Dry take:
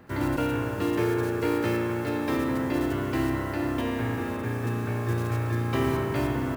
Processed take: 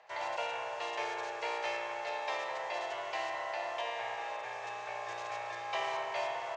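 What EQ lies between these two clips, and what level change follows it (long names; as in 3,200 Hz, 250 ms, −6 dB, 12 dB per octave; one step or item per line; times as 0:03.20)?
elliptic band-pass filter 680–6,700 Hz, stop band 40 dB
parametric band 1,400 Hz −13 dB 0.74 octaves
high-shelf EQ 4,400 Hz −9 dB
+4.0 dB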